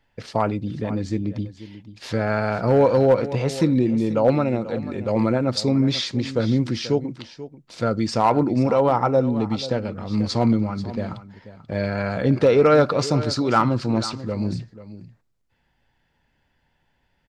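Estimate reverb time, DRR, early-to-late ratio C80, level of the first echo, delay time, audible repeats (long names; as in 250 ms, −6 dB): no reverb audible, no reverb audible, no reverb audible, −15.0 dB, 487 ms, 1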